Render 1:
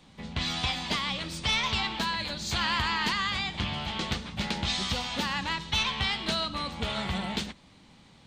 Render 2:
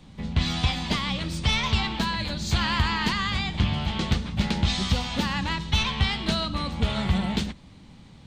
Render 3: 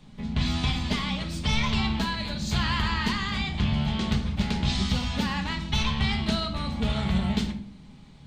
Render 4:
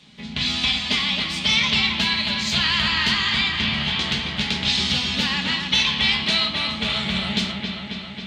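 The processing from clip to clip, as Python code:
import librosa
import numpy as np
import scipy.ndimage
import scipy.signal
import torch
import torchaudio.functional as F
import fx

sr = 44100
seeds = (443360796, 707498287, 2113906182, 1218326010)

y1 = fx.low_shelf(x, sr, hz=250.0, db=11.5)
y1 = F.gain(torch.from_numpy(y1), 1.0).numpy()
y2 = fx.room_shoebox(y1, sr, seeds[0], volume_m3=860.0, walls='furnished', distance_m=1.4)
y2 = F.gain(torch.from_numpy(y2), -3.5).numpy()
y3 = fx.weighting(y2, sr, curve='D')
y3 = fx.echo_wet_lowpass(y3, sr, ms=271, feedback_pct=71, hz=3600.0, wet_db=-5.5)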